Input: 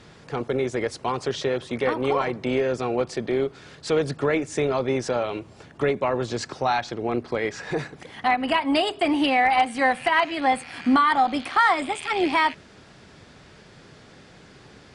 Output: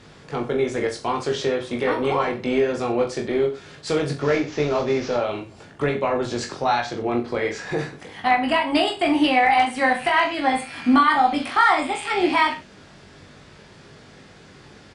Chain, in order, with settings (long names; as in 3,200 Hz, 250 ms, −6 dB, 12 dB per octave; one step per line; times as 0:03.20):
0:04.12–0:05.16: variable-slope delta modulation 32 kbit/s
reverse bouncing-ball delay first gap 20 ms, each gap 1.1×, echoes 5